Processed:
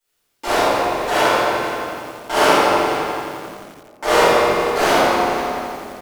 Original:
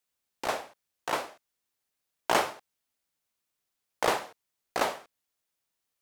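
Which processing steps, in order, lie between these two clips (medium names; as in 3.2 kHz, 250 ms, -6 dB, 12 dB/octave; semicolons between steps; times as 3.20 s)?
de-hum 188.5 Hz, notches 38; peak limiter -18 dBFS, peak gain reduction 8 dB; multi-tap echo 46/71/95/501 ms -3.5/-6.5/-11.5/-14 dB; reverberation RT60 2.5 s, pre-delay 3 ms, DRR -17.5 dB; bit-crushed delay 86 ms, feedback 80%, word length 6-bit, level -8 dB; trim -2 dB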